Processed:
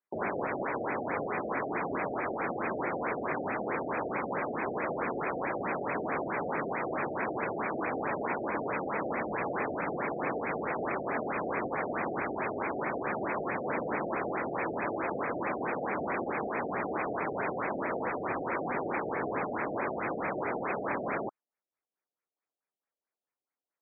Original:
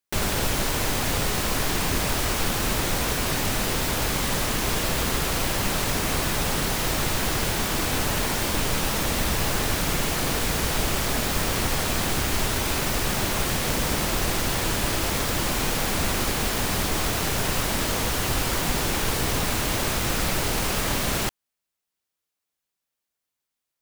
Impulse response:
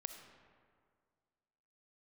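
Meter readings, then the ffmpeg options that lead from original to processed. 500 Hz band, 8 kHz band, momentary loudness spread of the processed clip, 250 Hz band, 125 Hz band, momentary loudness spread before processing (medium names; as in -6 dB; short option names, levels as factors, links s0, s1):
-2.5 dB, under -40 dB, 1 LU, -6.5 dB, -17.0 dB, 0 LU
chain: -af "highpass=310,lowpass=6200,afftfilt=real='re*lt(b*sr/1024,750*pow(2600/750,0.5+0.5*sin(2*PI*4.6*pts/sr)))':imag='im*lt(b*sr/1024,750*pow(2600/750,0.5+0.5*sin(2*PI*4.6*pts/sr)))':win_size=1024:overlap=0.75,volume=0.841"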